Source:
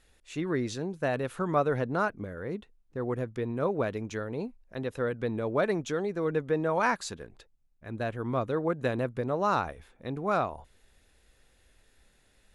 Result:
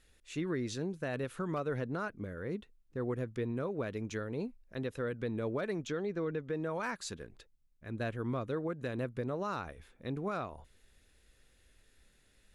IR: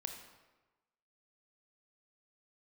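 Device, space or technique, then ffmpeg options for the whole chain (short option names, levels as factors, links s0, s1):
clipper into limiter: -filter_complex "[0:a]asettb=1/sr,asplit=3[s0][s1][s2];[s0]atrim=end=5.874[s3];[s1]atrim=start=5.87:end=6.5,asetpts=PTS-STARTPTS,afade=t=in:d=0.004:c=qsin,afade=t=out:st=0.626:d=0.004:c=qsin,lowpass=5200[s4];[s2]atrim=start=6.496[s5];[s3][s4]acrossfade=d=0.004:c1=hsin:c2=qsin[s6];[s6][s5]acrossfade=d=0.004:c1=qsin:c2=hsin,asoftclip=type=hard:threshold=0.158,alimiter=limit=0.075:level=0:latency=1:release=231,equalizer=f=800:t=o:w=0.96:g=-6,volume=0.794"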